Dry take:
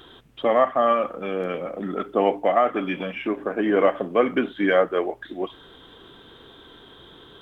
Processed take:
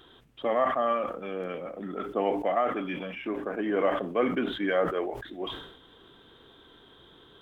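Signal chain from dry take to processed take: sustainer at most 67 dB/s; gain -7.5 dB

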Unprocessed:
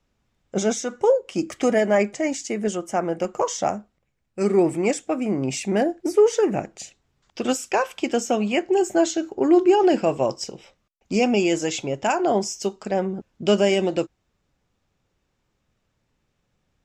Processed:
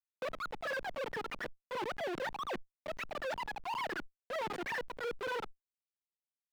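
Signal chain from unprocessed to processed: per-bin expansion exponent 2; wide varispeed 2.58×; dynamic EQ 840 Hz, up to -7 dB, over -36 dBFS, Q 1.6; treble ducked by the level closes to 1000 Hz, closed at -19.5 dBFS; Schmitt trigger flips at -41.5 dBFS; vibrato 0.55 Hz 52 cents; limiter -29.5 dBFS, peak gain reduction 4 dB; three-band isolator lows -20 dB, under 150 Hz, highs -16 dB, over 4000 Hz; sustainer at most 90 dB/s; gain -3 dB

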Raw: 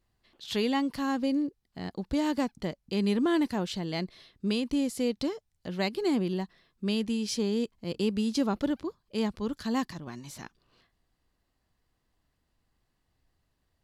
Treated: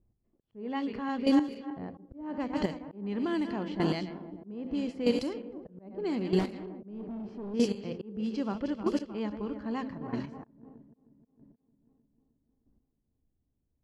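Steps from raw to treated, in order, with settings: regenerating reverse delay 0.155 s, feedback 78%, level -12 dB; Bessel low-pass 10000 Hz; low shelf 88 Hz -2.5 dB; notch 3700 Hz, Q 6.6; de-hum 87.64 Hz, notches 7; in parallel at +2.5 dB: limiter -25 dBFS, peak gain reduction 9 dB; on the sum: auto swell 0.239 s; 6.39–7.54 hard clip -27 dBFS, distortion -16 dB; chopper 0.79 Hz, depth 65%, duty 10%; low-pass opened by the level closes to 340 Hz, open at -24.5 dBFS

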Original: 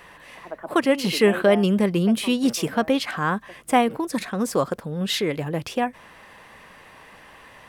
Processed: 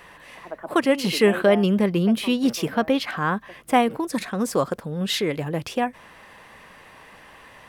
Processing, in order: 1.49–3.74 bell 8300 Hz -6.5 dB 0.88 oct

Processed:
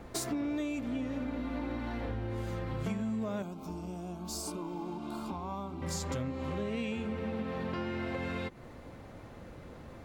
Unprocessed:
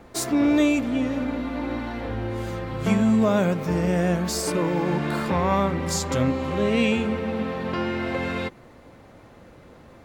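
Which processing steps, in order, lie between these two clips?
low shelf 150 Hz +5.5 dB; compressor 6:1, threshold -31 dBFS, peak gain reduction 16 dB; 3.42–5.82 fixed phaser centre 490 Hz, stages 6; gain -2 dB

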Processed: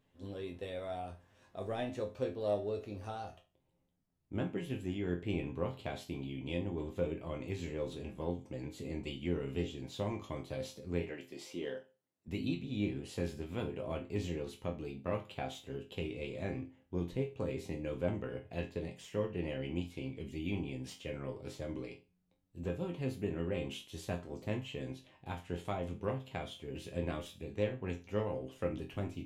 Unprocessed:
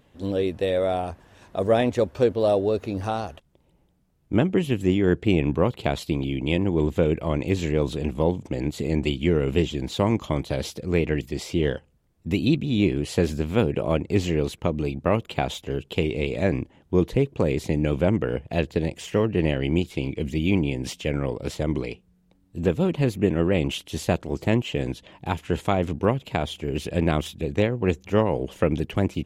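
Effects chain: 11.01–12.28 HPF 260 Hz 12 dB/oct; in parallel at -12 dB: soft clip -16 dBFS, distortion -13 dB; on the sum: resonator bank F2 minor, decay 0.3 s; gain -4.5 dB

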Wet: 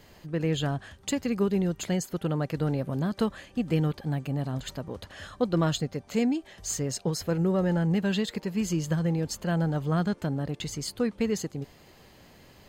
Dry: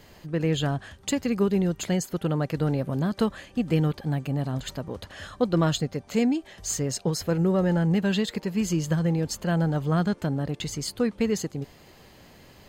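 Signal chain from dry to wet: 7.91–8.78 crackle 35/s -53 dBFS; gain -2.5 dB

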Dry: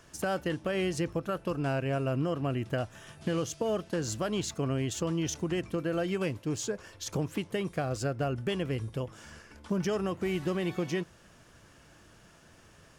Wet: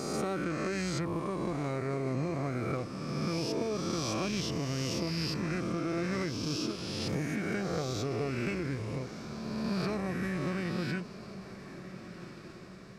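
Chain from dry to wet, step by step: spectral swells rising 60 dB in 1.91 s; diffused feedback echo 1.507 s, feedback 52%, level -13 dB; formant shift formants -4 st; gain -5 dB

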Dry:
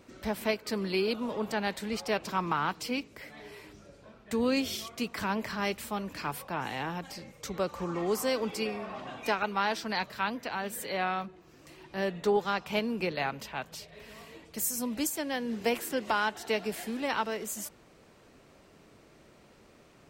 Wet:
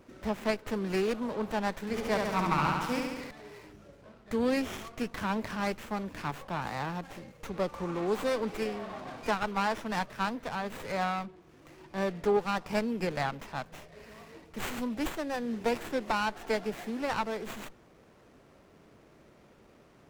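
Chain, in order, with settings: 1.8–3.31 flutter echo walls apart 11.9 m, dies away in 1.3 s; running maximum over 9 samples

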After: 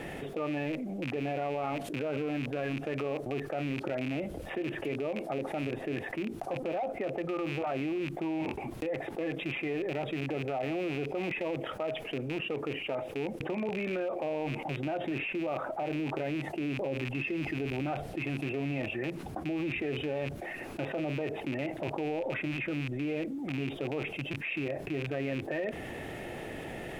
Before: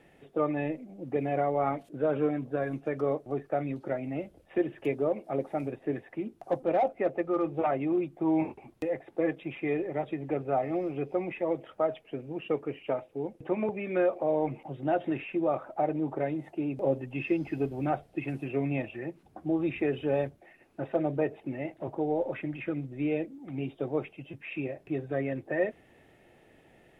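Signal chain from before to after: rattling part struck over -41 dBFS, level -31 dBFS; limiter -24.5 dBFS, peak gain reduction 9 dB; fast leveller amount 70%; gain -3 dB

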